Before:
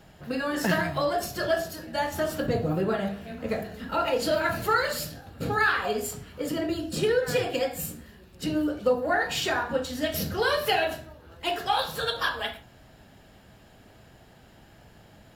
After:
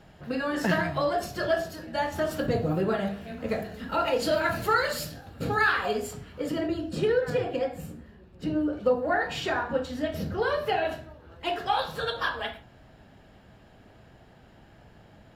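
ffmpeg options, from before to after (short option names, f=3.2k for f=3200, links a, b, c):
-af "asetnsamples=n=441:p=0,asendcmd='2.31 lowpass f 9400;5.98 lowpass f 3800;6.68 lowpass f 2000;7.3 lowpass f 1100;8.73 lowpass f 2200;10.02 lowpass f 1200;10.85 lowpass f 2700',lowpass=f=4.1k:p=1"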